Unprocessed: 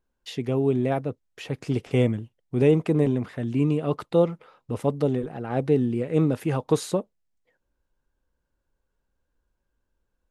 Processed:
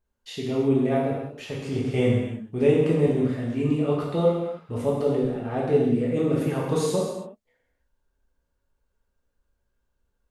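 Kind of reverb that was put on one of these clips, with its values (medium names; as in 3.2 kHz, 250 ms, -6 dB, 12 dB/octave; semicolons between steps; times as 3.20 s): gated-style reverb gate 360 ms falling, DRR -5 dB; trim -5 dB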